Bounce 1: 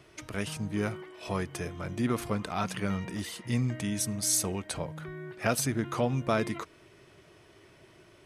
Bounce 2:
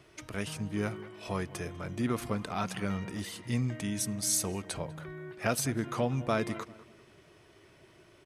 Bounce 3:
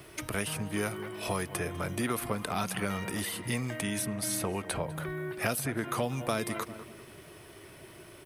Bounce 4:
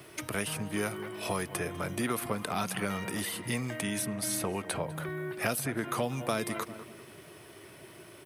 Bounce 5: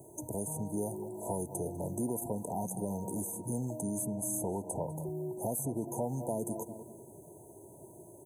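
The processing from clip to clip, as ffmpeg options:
ffmpeg -i in.wav -filter_complex "[0:a]asplit=2[link_01][link_02];[link_02]adelay=197,lowpass=frequency=2200:poles=1,volume=-17dB,asplit=2[link_03][link_04];[link_04]adelay=197,lowpass=frequency=2200:poles=1,volume=0.34,asplit=2[link_05][link_06];[link_06]adelay=197,lowpass=frequency=2200:poles=1,volume=0.34[link_07];[link_01][link_03][link_05][link_07]amix=inputs=4:normalize=0,volume=-2dB" out.wav
ffmpeg -i in.wav -filter_complex "[0:a]aexciter=amount=4.1:drive=5.4:freq=9000,acrossover=split=430|3200[link_01][link_02][link_03];[link_01]acompressor=threshold=-43dB:ratio=4[link_04];[link_02]acompressor=threshold=-40dB:ratio=4[link_05];[link_03]acompressor=threshold=-46dB:ratio=4[link_06];[link_04][link_05][link_06]amix=inputs=3:normalize=0,volume=8dB" out.wav
ffmpeg -i in.wav -af "highpass=100" out.wav
ffmpeg -i in.wav -filter_complex "[0:a]afftfilt=real='re*(1-between(b*sr/4096,1000,6100))':imag='im*(1-between(b*sr/4096,1000,6100))':win_size=4096:overlap=0.75,asplit=2[link_01][link_02];[link_02]alimiter=level_in=3dB:limit=-24dB:level=0:latency=1:release=14,volume=-3dB,volume=-2.5dB[link_03];[link_01][link_03]amix=inputs=2:normalize=0,volume=-5.5dB" out.wav

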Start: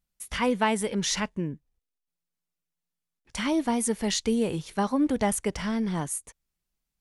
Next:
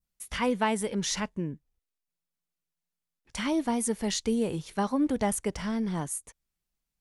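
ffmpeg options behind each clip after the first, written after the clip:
ffmpeg -i in.wav -af "adynamicequalizer=threshold=0.00708:dfrequency=2500:dqfactor=0.77:tfrequency=2500:tqfactor=0.77:attack=5:release=100:ratio=0.375:range=1.5:mode=cutabove:tftype=bell,volume=-2dB" out.wav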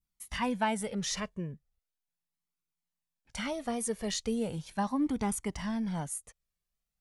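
ffmpeg -i in.wav -af "flanger=delay=0.8:depth=1:regen=-24:speed=0.38:shape=triangular" out.wav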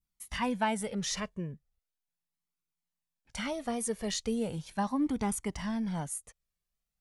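ffmpeg -i in.wav -af anull out.wav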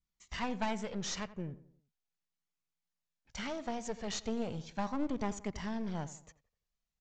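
ffmpeg -i in.wav -filter_complex "[0:a]aresample=16000,aeval=exprs='clip(val(0),-1,0.01)':channel_layout=same,aresample=44100,asplit=2[link_01][link_02];[link_02]adelay=86,lowpass=frequency=1900:poles=1,volume=-15dB,asplit=2[link_03][link_04];[link_04]adelay=86,lowpass=frequency=1900:poles=1,volume=0.46,asplit=2[link_05][link_06];[link_06]adelay=86,lowpass=frequency=1900:poles=1,volume=0.46,asplit=2[link_07][link_08];[link_08]adelay=86,lowpass=frequency=1900:poles=1,volume=0.46[link_09];[link_01][link_03][link_05][link_07][link_09]amix=inputs=5:normalize=0,volume=-2dB" out.wav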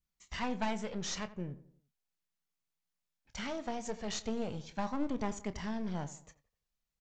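ffmpeg -i in.wav -filter_complex "[0:a]asplit=2[link_01][link_02];[link_02]adelay=28,volume=-13.5dB[link_03];[link_01][link_03]amix=inputs=2:normalize=0" out.wav

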